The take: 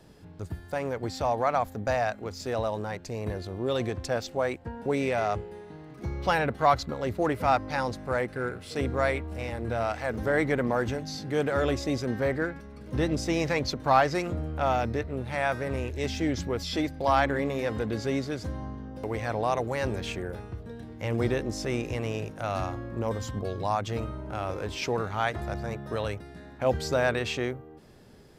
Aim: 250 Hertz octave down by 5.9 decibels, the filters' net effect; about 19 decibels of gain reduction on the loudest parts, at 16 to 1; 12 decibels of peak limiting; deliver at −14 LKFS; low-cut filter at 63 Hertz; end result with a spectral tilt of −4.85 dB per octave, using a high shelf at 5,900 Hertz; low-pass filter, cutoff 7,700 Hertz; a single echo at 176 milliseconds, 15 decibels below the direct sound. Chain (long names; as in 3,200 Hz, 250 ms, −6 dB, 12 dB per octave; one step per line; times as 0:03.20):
high-pass filter 63 Hz
low-pass filter 7,700 Hz
parametric band 250 Hz −8 dB
high-shelf EQ 5,900 Hz +4 dB
downward compressor 16 to 1, threshold −35 dBFS
brickwall limiter −31.5 dBFS
single-tap delay 176 ms −15 dB
level +28 dB